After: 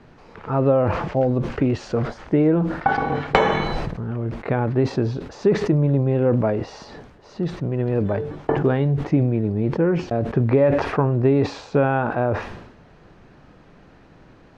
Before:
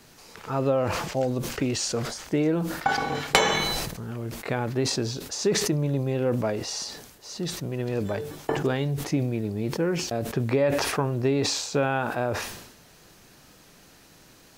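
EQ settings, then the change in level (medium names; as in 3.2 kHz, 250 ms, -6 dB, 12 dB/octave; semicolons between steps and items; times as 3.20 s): Bessel low-pass 1.4 kHz, order 2; bass shelf 120 Hz +4 dB; +6.0 dB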